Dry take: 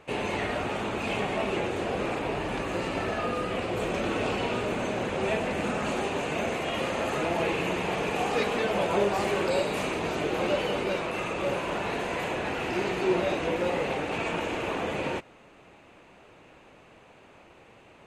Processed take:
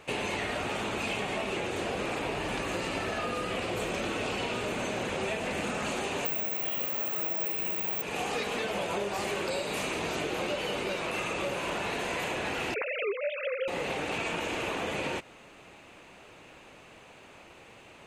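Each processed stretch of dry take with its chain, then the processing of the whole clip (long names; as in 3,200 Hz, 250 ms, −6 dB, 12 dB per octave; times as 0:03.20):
0:06.25–0:08.02: Butterworth low-pass 8,900 Hz 48 dB per octave + bad sample-rate conversion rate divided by 2×, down filtered, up zero stuff
0:12.74–0:13.68: three sine waves on the formant tracks + high-shelf EQ 2,500 Hz +10 dB
whole clip: high-shelf EQ 2,400 Hz +8.5 dB; downward compressor, threshold −29 dBFS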